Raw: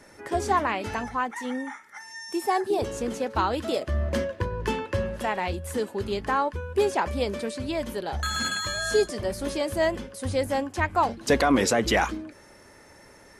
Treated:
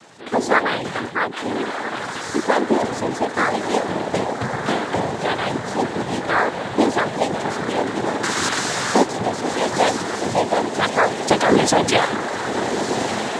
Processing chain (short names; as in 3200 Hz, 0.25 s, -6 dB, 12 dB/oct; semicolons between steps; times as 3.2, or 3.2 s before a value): diffused feedback echo 1.301 s, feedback 66%, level -6.5 dB; noise vocoder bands 6; gain +6 dB